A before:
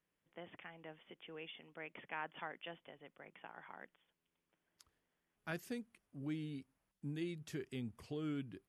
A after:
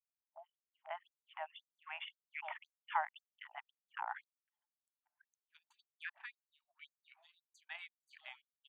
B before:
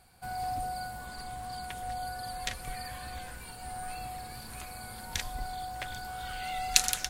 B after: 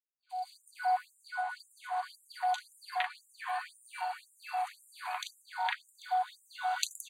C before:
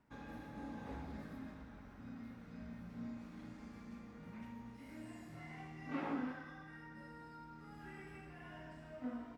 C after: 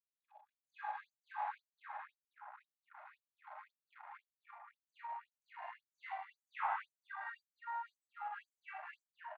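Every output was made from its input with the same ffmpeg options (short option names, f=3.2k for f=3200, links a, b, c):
-filter_complex "[0:a]acrossover=split=520|3700[a][b][c];[c]adelay=70[d];[b]adelay=530[e];[a][e][d]amix=inputs=3:normalize=0,acompressor=mode=upward:threshold=-50dB:ratio=2.5,acrossover=split=220 3800:gain=0.0891 1 0.141[f][g][h];[f][g][h]amix=inputs=3:normalize=0,acompressor=threshold=-50dB:ratio=1.5,anlmdn=0.0001,asuperstop=centerf=5300:order=12:qfactor=4.7,equalizer=f=880:w=2.3:g=10.5,afftfilt=real='re*gte(b*sr/1024,580*pow(7100/580,0.5+0.5*sin(2*PI*1.9*pts/sr)))':imag='im*gte(b*sr/1024,580*pow(7100/580,0.5+0.5*sin(2*PI*1.9*pts/sr)))':win_size=1024:overlap=0.75,volume=10dB"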